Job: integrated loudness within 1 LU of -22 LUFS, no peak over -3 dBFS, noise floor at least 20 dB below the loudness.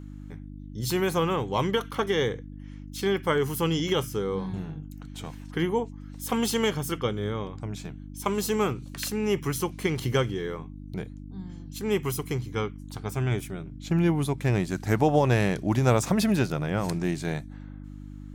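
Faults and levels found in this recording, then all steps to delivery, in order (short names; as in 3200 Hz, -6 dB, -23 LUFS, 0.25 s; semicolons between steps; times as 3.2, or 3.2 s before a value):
hum 50 Hz; harmonics up to 300 Hz; hum level -38 dBFS; loudness -27.5 LUFS; peak -10.0 dBFS; loudness target -22.0 LUFS
-> de-hum 50 Hz, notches 6; gain +5.5 dB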